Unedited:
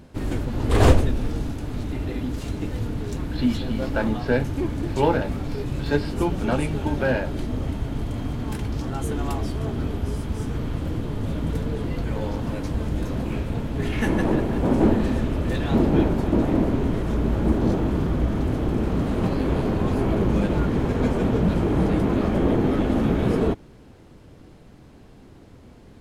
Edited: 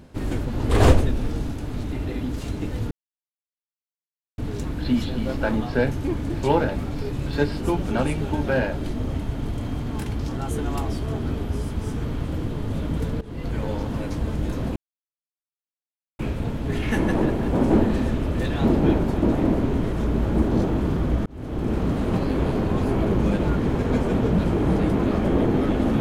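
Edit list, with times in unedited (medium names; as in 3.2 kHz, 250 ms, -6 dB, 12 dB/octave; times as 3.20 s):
2.91 s: insert silence 1.47 s
11.74–12.06 s: fade in, from -17.5 dB
13.29 s: insert silence 1.43 s
18.36–18.83 s: fade in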